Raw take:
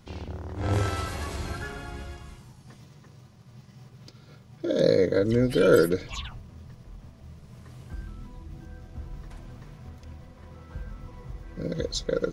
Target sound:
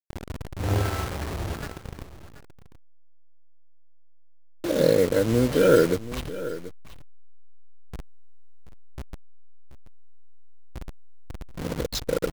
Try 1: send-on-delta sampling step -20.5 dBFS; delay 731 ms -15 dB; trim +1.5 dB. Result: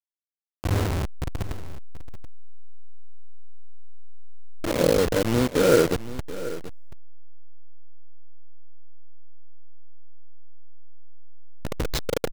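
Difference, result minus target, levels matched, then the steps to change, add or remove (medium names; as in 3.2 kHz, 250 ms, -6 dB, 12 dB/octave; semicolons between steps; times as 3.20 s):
send-on-delta sampling: distortion +10 dB
change: send-on-delta sampling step -28.5 dBFS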